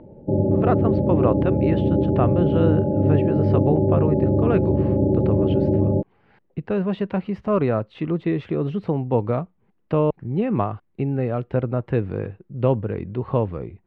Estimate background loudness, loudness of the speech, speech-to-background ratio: -20.0 LUFS, -24.5 LUFS, -4.5 dB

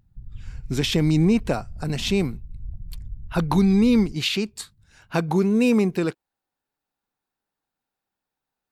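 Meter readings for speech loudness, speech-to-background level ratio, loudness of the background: -22.0 LUFS, 19.5 dB, -41.5 LUFS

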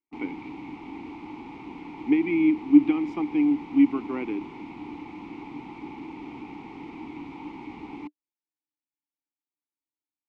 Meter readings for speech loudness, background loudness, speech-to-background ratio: -23.0 LUFS, -40.0 LUFS, 17.0 dB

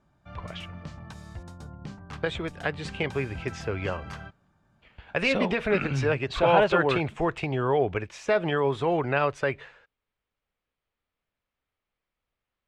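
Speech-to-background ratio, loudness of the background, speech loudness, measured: 16.0 dB, -42.5 LUFS, -26.5 LUFS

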